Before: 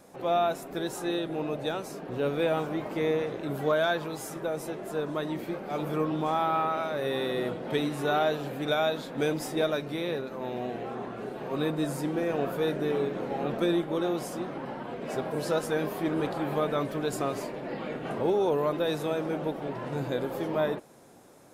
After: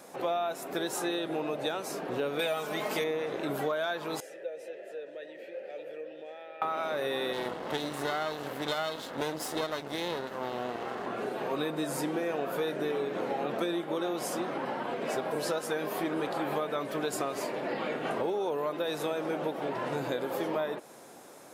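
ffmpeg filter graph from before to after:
-filter_complex "[0:a]asettb=1/sr,asplit=3[s0][s1][s2];[s0]atrim=end=2.394[s3];[s1]atrim=start=2.39:end=3.04,asetpts=PTS-STARTPTS,afade=t=in:d=0.004:c=qsin,afade=t=out:st=0.646:d=0.004:c=qsin,highshelf=f=3100:g=12,aecho=1:1:4.7:0.49,atrim=end_sample=28665[s4];[s2]atrim=start=3.036[s5];[s3][s4]acrossfade=d=0.004:c1=hsin:c2=qsin[s6];[s6][s5]acrossfade=d=0.004:c1=qsin:c2=hsin,asettb=1/sr,asplit=3[s7][s8][s9];[s7]atrim=end=4.204[s10];[s8]atrim=start=4.2:end=6.62,asetpts=PTS-STARTPTS,afade=t=in:d=0.004:c=qsin,afade=t=out:st=2.416:d=0.004:c=qsin,acompressor=threshold=0.0224:ratio=3:attack=3.2:release=140:knee=1:detection=peak,asplit=3[s11][s12][s13];[s11]bandpass=f=530:t=q:w=8,volume=1[s14];[s12]bandpass=f=1840:t=q:w=8,volume=0.501[s15];[s13]bandpass=f=2480:t=q:w=8,volume=0.355[s16];[s14][s15][s16]amix=inputs=3:normalize=0,highshelf=f=4200:g=10[s17];[s9]atrim=start=6.616[s18];[s10][s17]acrossfade=d=0.004:c1=hsin:c2=qsin[s19];[s19][s18]acrossfade=d=0.004:c1=qsin:c2=hsin,asettb=1/sr,asplit=3[s20][s21][s22];[s20]atrim=end=7.334[s23];[s21]atrim=start=7.33:end=11.06,asetpts=PTS-STARTPTS,afade=t=in:d=0.004:c=qsin,afade=t=out:st=3.726:d=0.004:c=qsin,aeval=exprs='max(val(0),0)':c=same,bandreject=f=2400:w=12[s24];[s22]atrim=start=11.056[s25];[s23][s24]acrossfade=d=0.004:c1=hsin:c2=qsin[s26];[s26][s25]acrossfade=d=0.004:c1=qsin:c2=hsin,highpass=f=440:p=1,acompressor=threshold=0.0178:ratio=6,volume=2.11"

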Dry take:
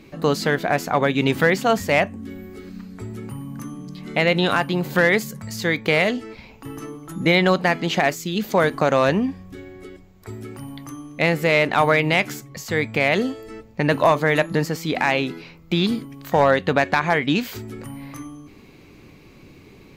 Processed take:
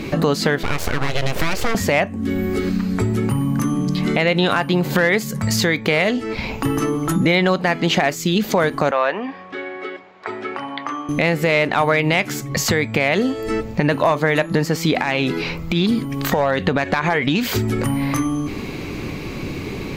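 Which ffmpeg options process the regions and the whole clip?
-filter_complex "[0:a]asettb=1/sr,asplit=3[s0][s1][s2];[s0]atrim=end=0.634[s3];[s1]atrim=start=0.63:end=1.75,asetpts=PTS-STARTPTS,afade=t=in:d=0.004:c=qsin,afade=t=out:st=1.116:d=0.004:c=qsin,acompressor=threshold=0.0794:ratio=3:attack=3.2:release=140:knee=1:detection=peak,aeval=exprs='abs(val(0))':c=same[s4];[s2]atrim=start=1.746[s5];[s3][s4]acrossfade=d=0.004:c1=hsin:c2=qsin[s6];[s6][s5]acrossfade=d=0.004:c1=qsin:c2=hsin,asettb=1/sr,asplit=3[s7][s8][s9];[s7]atrim=end=8.914[s10];[s8]atrim=start=8.91:end=11.09,asetpts=PTS-STARTPTS,afade=t=in:d=0.004:c=qsin,afade=t=out:st=2.176:d=0.004:c=qsin,highpass=710,lowpass=3800,aemphasis=mode=reproduction:type=75fm[s11];[s9]atrim=start=11.086[s12];[s10][s11]acrossfade=d=0.004:c1=hsin:c2=qsin[s13];[s13][s12]acrossfade=d=0.004:c1=qsin:c2=hsin,asettb=1/sr,asplit=3[s14][s15][s16];[s14]atrim=end=15.024[s17];[s15]atrim=start=15.02:end=17.84,asetpts=PTS-STARTPTS,afade=t=in:d=0.004:c=qsin,afade=t=out:st=2.816:d=0.004:c=qsin,acompressor=threshold=0.0794:ratio=3:attack=3.2:release=140:knee=1:detection=peak,aphaser=in_gain=1:out_gain=1:delay=2.6:decay=0.24:speed=1.2:type=triangular[s18];[s16]atrim=start=17.836[s19];[s17][s18]acrossfade=d=0.004:c1=hsin:c2=qsin[s20];[s20][s19]acrossfade=d=0.004:c1=qsin:c2=hsin,highshelf=f=9400:g=-4.5,acompressor=threshold=0.0158:ratio=4,alimiter=level_in=16.8:limit=0.891:release=50:level=0:latency=1,volume=0.531"

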